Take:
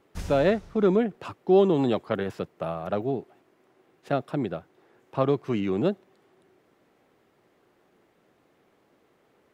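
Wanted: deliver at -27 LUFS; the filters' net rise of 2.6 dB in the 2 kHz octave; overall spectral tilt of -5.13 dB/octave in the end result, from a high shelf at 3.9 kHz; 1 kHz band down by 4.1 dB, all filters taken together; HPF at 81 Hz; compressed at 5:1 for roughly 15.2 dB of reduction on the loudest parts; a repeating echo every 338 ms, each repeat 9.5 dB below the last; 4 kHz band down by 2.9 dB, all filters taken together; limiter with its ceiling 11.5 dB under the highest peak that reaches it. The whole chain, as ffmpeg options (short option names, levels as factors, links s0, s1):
-af "highpass=81,equalizer=f=1000:t=o:g=-8,equalizer=f=2000:t=o:g=8,highshelf=f=3900:g=-4,equalizer=f=4000:t=o:g=-4.5,acompressor=threshold=0.0224:ratio=5,alimiter=level_in=2.11:limit=0.0631:level=0:latency=1,volume=0.473,aecho=1:1:338|676|1014|1352:0.335|0.111|0.0365|0.012,volume=5.31"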